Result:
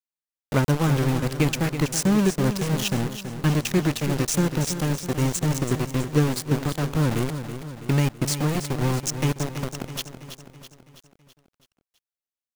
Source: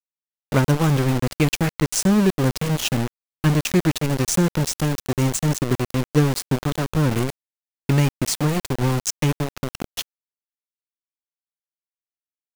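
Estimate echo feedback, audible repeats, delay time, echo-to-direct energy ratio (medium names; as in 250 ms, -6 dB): 54%, 5, 328 ms, -8.5 dB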